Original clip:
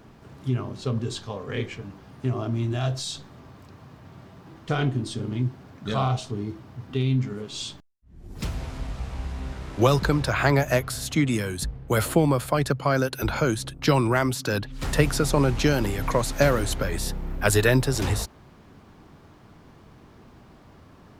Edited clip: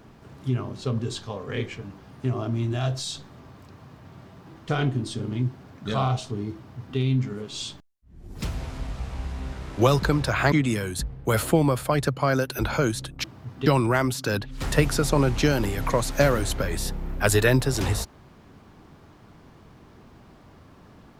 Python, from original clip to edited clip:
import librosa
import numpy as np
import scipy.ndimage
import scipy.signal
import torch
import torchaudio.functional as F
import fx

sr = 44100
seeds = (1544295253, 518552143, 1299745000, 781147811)

y = fx.edit(x, sr, fx.duplicate(start_s=6.56, length_s=0.42, to_s=13.87),
    fx.cut(start_s=10.52, length_s=0.63), tone=tone)